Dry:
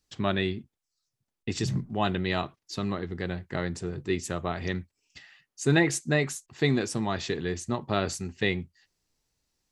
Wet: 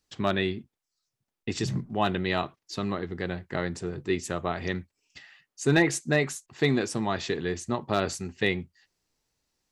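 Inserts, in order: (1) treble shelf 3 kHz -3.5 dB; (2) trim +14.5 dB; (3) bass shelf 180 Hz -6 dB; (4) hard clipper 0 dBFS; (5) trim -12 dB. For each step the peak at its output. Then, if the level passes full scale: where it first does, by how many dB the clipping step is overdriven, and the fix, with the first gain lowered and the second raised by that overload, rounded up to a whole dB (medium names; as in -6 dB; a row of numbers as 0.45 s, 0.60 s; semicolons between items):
-10.0 dBFS, +4.5 dBFS, +4.0 dBFS, 0.0 dBFS, -12.0 dBFS; step 2, 4.0 dB; step 2 +10.5 dB, step 5 -8 dB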